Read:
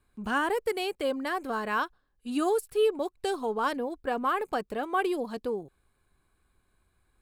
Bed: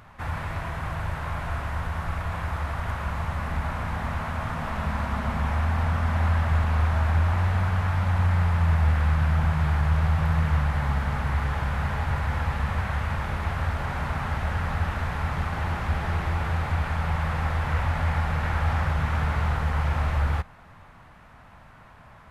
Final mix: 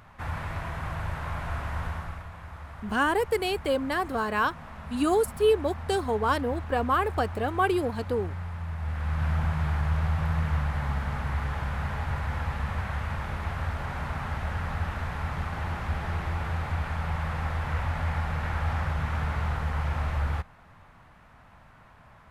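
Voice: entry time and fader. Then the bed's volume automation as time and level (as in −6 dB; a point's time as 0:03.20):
2.65 s, +3.0 dB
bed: 0:01.89 −2.5 dB
0:02.32 −13 dB
0:08.74 −13 dB
0:09.27 −4 dB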